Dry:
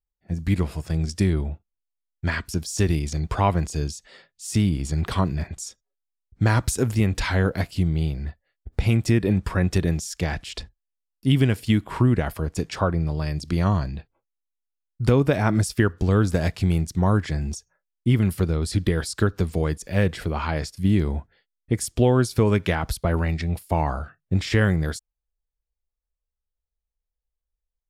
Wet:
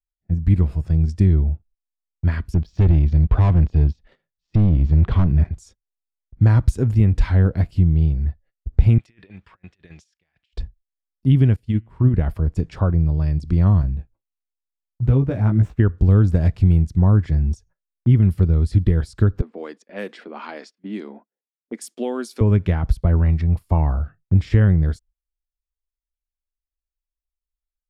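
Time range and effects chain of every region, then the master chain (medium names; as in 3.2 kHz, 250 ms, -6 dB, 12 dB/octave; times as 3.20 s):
2.54–5.50 s: low-pass 3.9 kHz 24 dB/octave + waveshaping leveller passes 1 + overload inside the chain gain 17 dB
8.98–10.53 s: band-pass filter 2.7 kHz, Q 1.3 + compressor with a negative ratio -43 dBFS, ratio -0.5
11.56–12.14 s: de-hum 112.8 Hz, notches 27 + upward expansion 2.5:1, over -26 dBFS
13.82–15.80 s: median filter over 9 samples + chorus 1.5 Hz, delay 15 ms, depth 3.6 ms
19.41–22.41 s: elliptic high-pass 220 Hz + tilt EQ +3 dB/octave + level-controlled noise filter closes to 500 Hz, open at -22.5 dBFS
23.25–23.78 s: short-mantissa float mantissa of 6-bit + peaking EQ 1.1 kHz +9 dB 0.47 oct
whole clip: RIAA curve playback; gate -40 dBFS, range -17 dB; treble shelf 10 kHz +6 dB; trim -5.5 dB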